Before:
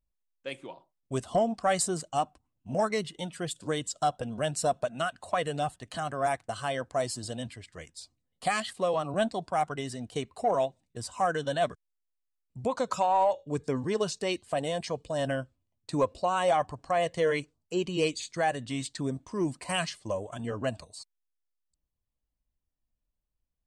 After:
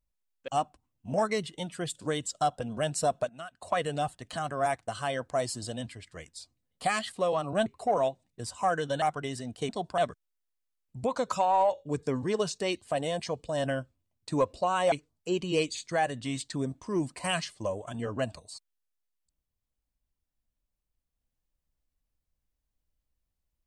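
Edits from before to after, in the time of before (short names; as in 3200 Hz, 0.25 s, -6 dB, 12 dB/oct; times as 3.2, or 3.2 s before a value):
0.48–2.09 cut
4.9–5.23 gain -11.5 dB
9.27–9.56 swap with 10.23–11.59
16.53–17.37 cut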